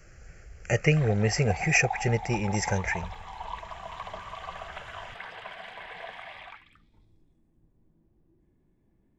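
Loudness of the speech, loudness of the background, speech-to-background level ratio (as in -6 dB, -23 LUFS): -26.0 LUFS, -39.0 LUFS, 13.0 dB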